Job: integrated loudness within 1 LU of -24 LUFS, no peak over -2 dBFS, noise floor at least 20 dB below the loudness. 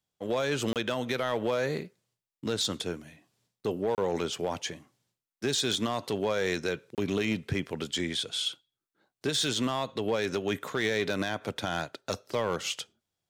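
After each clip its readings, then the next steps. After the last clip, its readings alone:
clipped samples 0.6%; clipping level -21.0 dBFS; dropouts 3; longest dropout 28 ms; loudness -31.0 LUFS; peak level -21.0 dBFS; loudness target -24.0 LUFS
-> clip repair -21 dBFS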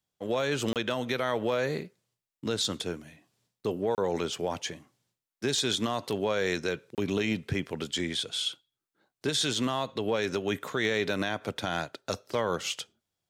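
clipped samples 0.0%; dropouts 3; longest dropout 28 ms
-> interpolate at 0.73/3.95/6.95 s, 28 ms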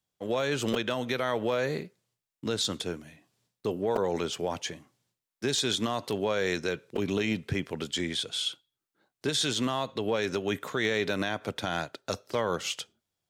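dropouts 0; loudness -30.5 LUFS; peak level -14.0 dBFS; loudness target -24.0 LUFS
-> trim +6.5 dB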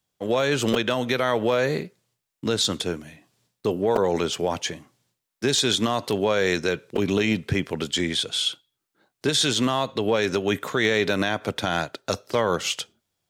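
loudness -24.0 LUFS; peak level -7.5 dBFS; noise floor -81 dBFS

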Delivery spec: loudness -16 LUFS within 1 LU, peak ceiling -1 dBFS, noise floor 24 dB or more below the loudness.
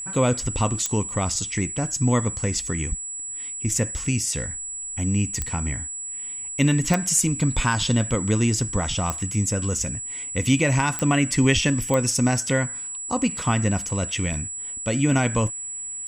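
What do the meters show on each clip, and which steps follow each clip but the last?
clicks found 6; steady tone 7.8 kHz; tone level -30 dBFS; loudness -23.5 LUFS; peak level -5.0 dBFS; loudness target -16.0 LUFS
-> de-click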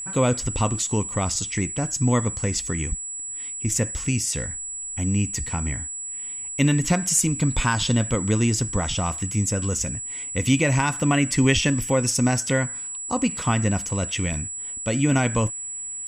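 clicks found 0; steady tone 7.8 kHz; tone level -30 dBFS
-> band-stop 7.8 kHz, Q 30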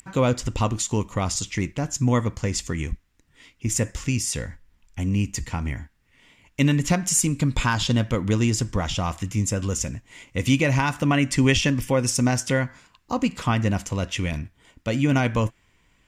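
steady tone not found; loudness -24.0 LUFS; peak level -5.5 dBFS; loudness target -16.0 LUFS
-> trim +8 dB; peak limiter -1 dBFS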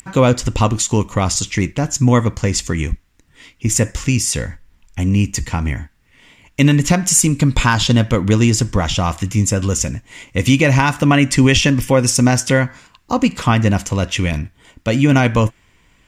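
loudness -16.0 LUFS; peak level -1.0 dBFS; noise floor -56 dBFS

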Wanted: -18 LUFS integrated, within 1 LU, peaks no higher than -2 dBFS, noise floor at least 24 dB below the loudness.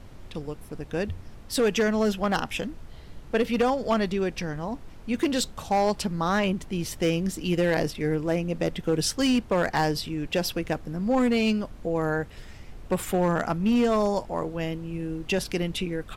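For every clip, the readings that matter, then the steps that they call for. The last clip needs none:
clipped samples 1.2%; clipping level -17.0 dBFS; noise floor -45 dBFS; noise floor target -51 dBFS; loudness -26.5 LUFS; peak level -17.0 dBFS; loudness target -18.0 LUFS
-> clip repair -17 dBFS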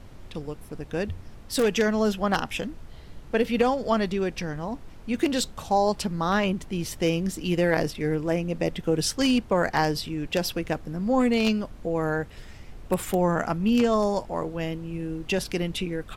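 clipped samples 0.0%; noise floor -45 dBFS; noise floor target -50 dBFS
-> noise print and reduce 6 dB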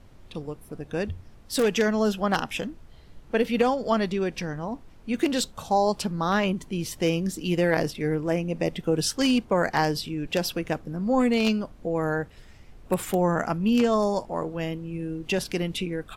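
noise floor -50 dBFS; loudness -26.0 LUFS; peak level -8.0 dBFS; loudness target -18.0 LUFS
-> trim +8 dB; peak limiter -2 dBFS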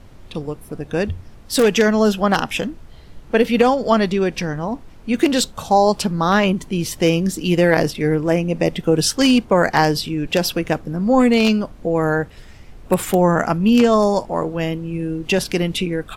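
loudness -18.0 LUFS; peak level -2.0 dBFS; noise floor -42 dBFS

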